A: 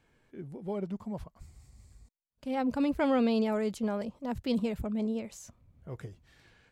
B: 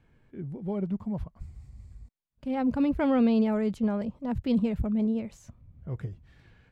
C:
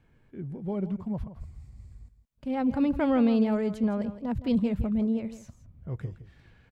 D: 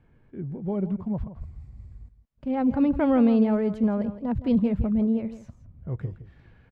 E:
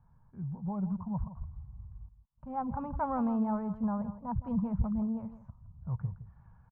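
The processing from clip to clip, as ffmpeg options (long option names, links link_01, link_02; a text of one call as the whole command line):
ffmpeg -i in.wav -af "bass=frequency=250:gain=9,treble=frequency=4000:gain=-9" out.wav
ffmpeg -i in.wav -af "aecho=1:1:165:0.211" out.wav
ffmpeg -i in.wav -af "lowpass=frequency=1600:poles=1,volume=3.5dB" out.wav
ffmpeg -i in.wav -af "firequalizer=gain_entry='entry(180,0);entry(310,-21);entry(940,7);entry(2000,-19);entry(3700,-30)':delay=0.05:min_phase=1,volume=-3dB" out.wav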